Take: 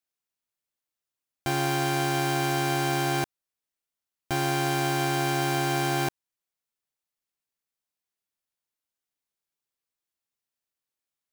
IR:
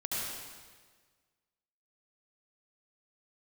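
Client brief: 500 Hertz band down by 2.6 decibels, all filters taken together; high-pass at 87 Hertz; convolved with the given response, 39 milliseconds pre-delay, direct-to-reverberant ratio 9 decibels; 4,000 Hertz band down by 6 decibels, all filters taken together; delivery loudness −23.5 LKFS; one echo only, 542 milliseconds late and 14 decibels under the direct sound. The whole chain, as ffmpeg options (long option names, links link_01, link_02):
-filter_complex "[0:a]highpass=87,equalizer=frequency=500:width_type=o:gain=-4.5,equalizer=frequency=4000:width_type=o:gain=-8,aecho=1:1:542:0.2,asplit=2[link_01][link_02];[1:a]atrim=start_sample=2205,adelay=39[link_03];[link_02][link_03]afir=irnorm=-1:irlink=0,volume=-14dB[link_04];[link_01][link_04]amix=inputs=2:normalize=0,volume=4.5dB"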